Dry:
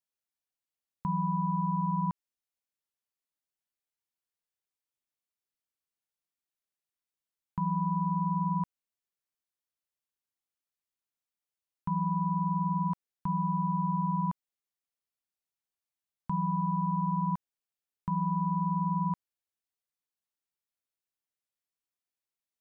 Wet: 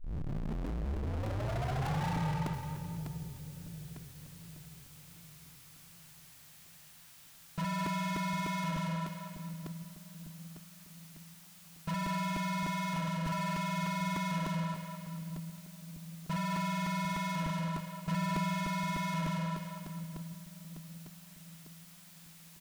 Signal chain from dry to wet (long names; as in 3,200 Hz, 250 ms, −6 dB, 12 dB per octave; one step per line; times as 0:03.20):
turntable start at the beginning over 2.25 s
parametric band 410 Hz −14.5 dB 0.69 octaves
reverse bouncing-ball delay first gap 70 ms, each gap 1.1×, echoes 5
downward compressor 3 to 1, threshold −33 dBFS, peak gain reduction 8 dB
power curve on the samples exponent 0.5
soft clipping −35 dBFS, distortion −11 dB
parametric band 160 Hz +5.5 dB 0.46 octaves
echo with a time of its own for lows and highs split 440 Hz, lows 754 ms, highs 212 ms, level −6.5 dB
regular buffer underruns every 0.30 s, samples 128, repeat, from 0:00.66